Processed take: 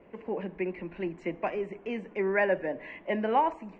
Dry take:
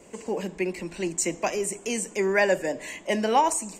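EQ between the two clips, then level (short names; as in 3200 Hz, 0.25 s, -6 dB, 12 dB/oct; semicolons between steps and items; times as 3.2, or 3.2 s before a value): LPF 2400 Hz 24 dB/oct; -4.0 dB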